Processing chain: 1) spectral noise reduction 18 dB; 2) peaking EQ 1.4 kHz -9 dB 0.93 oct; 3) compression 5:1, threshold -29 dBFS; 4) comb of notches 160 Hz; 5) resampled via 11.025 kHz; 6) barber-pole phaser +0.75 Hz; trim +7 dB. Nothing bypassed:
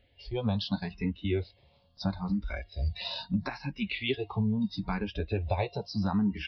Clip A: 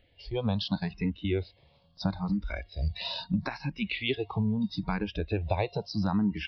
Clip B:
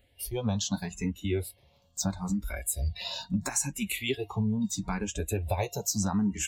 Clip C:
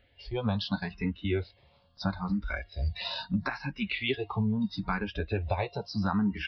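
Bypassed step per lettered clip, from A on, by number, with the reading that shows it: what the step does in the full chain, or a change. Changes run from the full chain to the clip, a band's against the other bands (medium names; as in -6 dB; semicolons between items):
4, crest factor change +2.0 dB; 5, momentary loudness spread change -1 LU; 2, 2 kHz band +4.0 dB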